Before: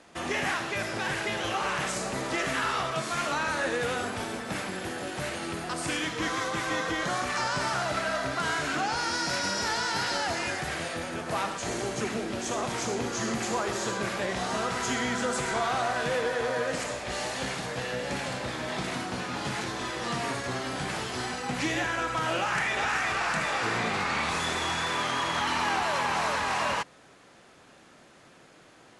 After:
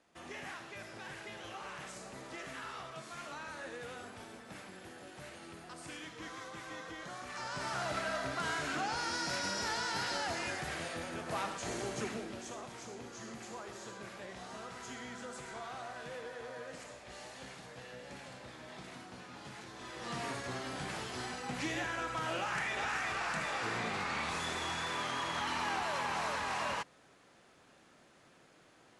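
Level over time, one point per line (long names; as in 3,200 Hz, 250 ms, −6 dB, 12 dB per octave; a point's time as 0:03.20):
0:07.19 −16 dB
0:07.85 −7 dB
0:12.02 −7 dB
0:12.71 −16.5 dB
0:19.69 −16.5 dB
0:20.19 −8 dB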